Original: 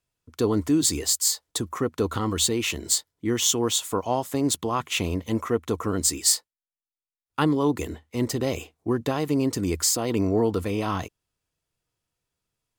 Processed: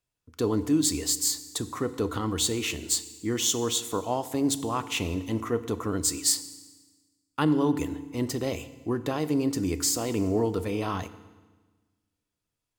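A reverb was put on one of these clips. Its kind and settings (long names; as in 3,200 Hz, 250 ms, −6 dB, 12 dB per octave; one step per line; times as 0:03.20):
feedback delay network reverb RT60 1.3 s, low-frequency decay 1.25×, high-frequency decay 0.95×, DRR 12 dB
level −3.5 dB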